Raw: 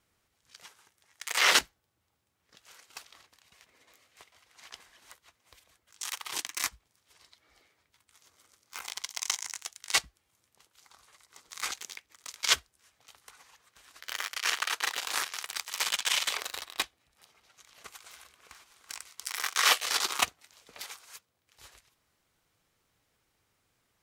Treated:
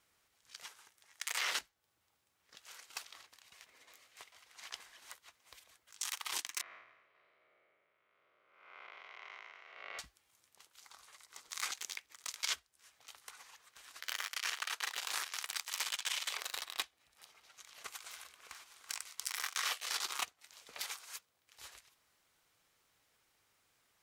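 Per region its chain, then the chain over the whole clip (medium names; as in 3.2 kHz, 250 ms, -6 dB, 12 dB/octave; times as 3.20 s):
6.61–9.99 s: spectral blur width 301 ms + cabinet simulation 170–2200 Hz, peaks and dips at 270 Hz -8 dB, 390 Hz +4 dB, 590 Hz +8 dB, 880 Hz -9 dB, 1.7 kHz -6 dB + feedback delay 269 ms, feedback 40%, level -16.5 dB
whole clip: compression 5:1, threshold -36 dBFS; bass shelf 410 Hz -10 dB; trim +1.5 dB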